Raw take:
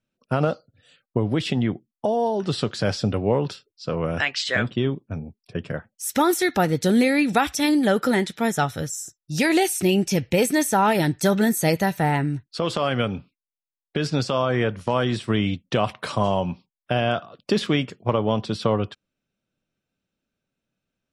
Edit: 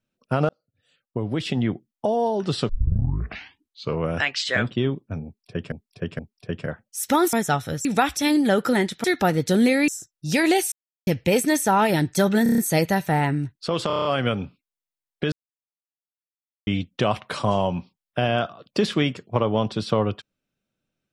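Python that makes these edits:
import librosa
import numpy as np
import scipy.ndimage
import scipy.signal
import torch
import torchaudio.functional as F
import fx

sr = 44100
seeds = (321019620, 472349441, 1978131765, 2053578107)

y = fx.edit(x, sr, fx.fade_in_span(start_s=0.49, length_s=1.21),
    fx.tape_start(start_s=2.69, length_s=1.32),
    fx.repeat(start_s=5.25, length_s=0.47, count=3),
    fx.swap(start_s=6.39, length_s=0.84, other_s=8.42, other_length_s=0.52),
    fx.silence(start_s=9.78, length_s=0.35),
    fx.stutter(start_s=11.49, slice_s=0.03, count=6),
    fx.stutter(start_s=12.78, slice_s=0.03, count=7),
    fx.silence(start_s=14.05, length_s=1.35), tone=tone)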